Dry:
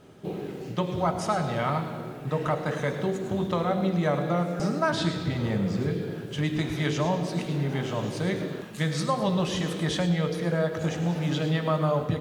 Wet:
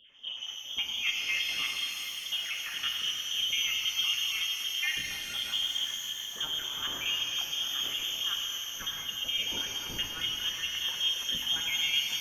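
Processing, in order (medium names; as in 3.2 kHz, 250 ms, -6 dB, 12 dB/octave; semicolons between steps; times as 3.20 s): random holes in the spectrogram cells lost 34%; frequency inversion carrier 3.4 kHz; pitch-shifted reverb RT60 3.3 s, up +12 st, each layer -8 dB, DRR 1.5 dB; trim -6 dB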